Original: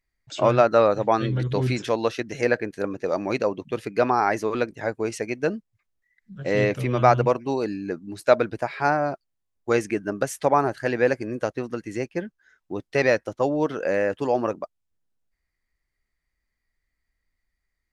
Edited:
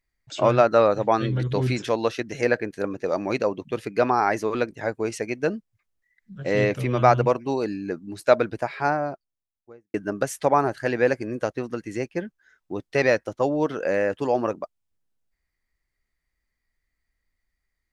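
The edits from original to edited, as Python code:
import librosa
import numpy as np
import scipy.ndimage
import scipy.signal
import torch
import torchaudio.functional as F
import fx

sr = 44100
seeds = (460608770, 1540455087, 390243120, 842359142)

y = fx.studio_fade_out(x, sr, start_s=8.59, length_s=1.35)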